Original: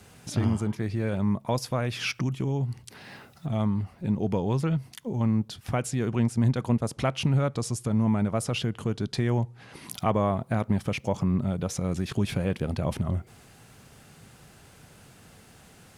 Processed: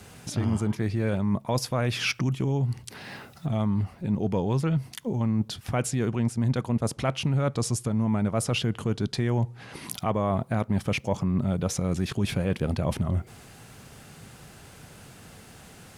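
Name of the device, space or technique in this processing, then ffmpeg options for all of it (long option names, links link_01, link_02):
compression on the reversed sound: -af "areverse,acompressor=threshold=-26dB:ratio=6,areverse,volume=4.5dB"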